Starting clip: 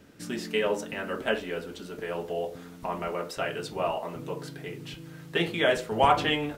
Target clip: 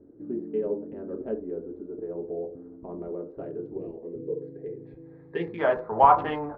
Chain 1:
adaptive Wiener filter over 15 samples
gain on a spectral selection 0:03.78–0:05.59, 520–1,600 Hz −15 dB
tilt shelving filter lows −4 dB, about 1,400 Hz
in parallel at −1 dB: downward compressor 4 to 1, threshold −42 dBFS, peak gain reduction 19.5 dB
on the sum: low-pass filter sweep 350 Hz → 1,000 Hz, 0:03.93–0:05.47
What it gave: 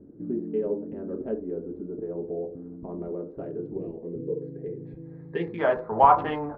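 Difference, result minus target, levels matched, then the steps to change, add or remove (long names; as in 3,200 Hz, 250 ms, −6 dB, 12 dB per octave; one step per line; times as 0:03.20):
125 Hz band +4.0 dB
add after downward compressor: high-pass filter 170 Hz 24 dB per octave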